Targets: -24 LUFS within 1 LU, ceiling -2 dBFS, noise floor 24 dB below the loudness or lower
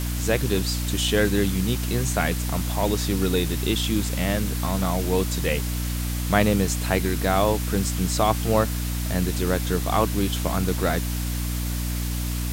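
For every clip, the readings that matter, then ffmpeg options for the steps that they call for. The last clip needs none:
hum 60 Hz; highest harmonic 300 Hz; hum level -25 dBFS; noise floor -27 dBFS; noise floor target -48 dBFS; loudness -24.0 LUFS; peak level -3.5 dBFS; loudness target -24.0 LUFS
-> -af "bandreject=f=60:t=h:w=6,bandreject=f=120:t=h:w=6,bandreject=f=180:t=h:w=6,bandreject=f=240:t=h:w=6,bandreject=f=300:t=h:w=6"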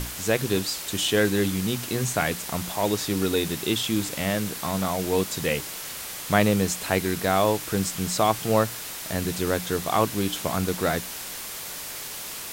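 hum not found; noise floor -36 dBFS; noise floor target -50 dBFS
-> -af "afftdn=nr=14:nf=-36"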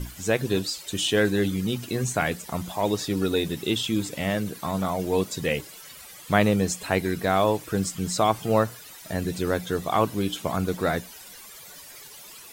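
noise floor -45 dBFS; noise floor target -50 dBFS
-> -af "afftdn=nr=6:nf=-45"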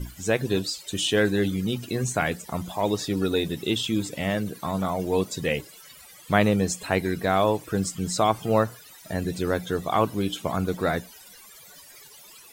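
noise floor -49 dBFS; noise floor target -50 dBFS
-> -af "afftdn=nr=6:nf=-49"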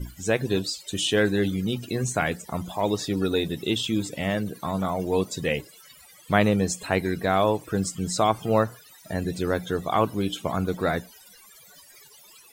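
noise floor -52 dBFS; loudness -26.0 LUFS; peak level -4.5 dBFS; loudness target -24.0 LUFS
-> -af "volume=1.26"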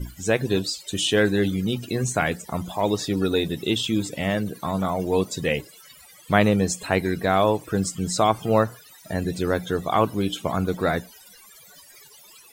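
loudness -24.0 LUFS; peak level -2.5 dBFS; noise floor -50 dBFS

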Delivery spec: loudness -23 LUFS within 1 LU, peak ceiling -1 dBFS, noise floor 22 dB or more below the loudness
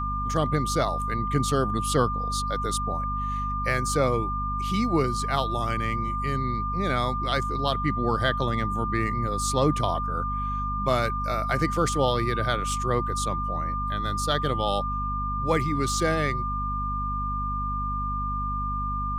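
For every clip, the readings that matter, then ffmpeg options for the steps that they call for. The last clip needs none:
hum 50 Hz; highest harmonic 250 Hz; hum level -29 dBFS; steady tone 1.2 kHz; tone level -28 dBFS; loudness -26.5 LUFS; peak level -8.5 dBFS; loudness target -23.0 LUFS
-> -af "bandreject=f=50:t=h:w=4,bandreject=f=100:t=h:w=4,bandreject=f=150:t=h:w=4,bandreject=f=200:t=h:w=4,bandreject=f=250:t=h:w=4"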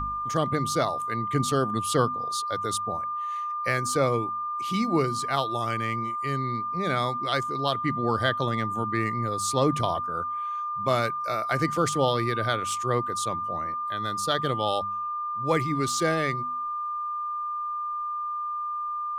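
hum not found; steady tone 1.2 kHz; tone level -28 dBFS
-> -af "bandreject=f=1200:w=30"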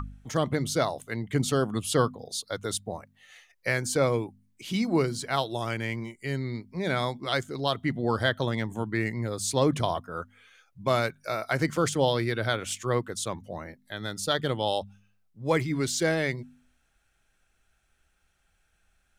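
steady tone not found; loudness -28.5 LUFS; peak level -10.0 dBFS; loudness target -23.0 LUFS
-> -af "volume=1.88"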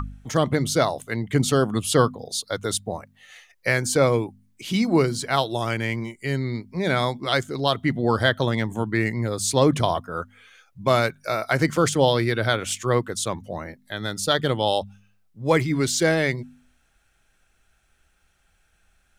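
loudness -23.0 LUFS; peak level -4.5 dBFS; noise floor -65 dBFS

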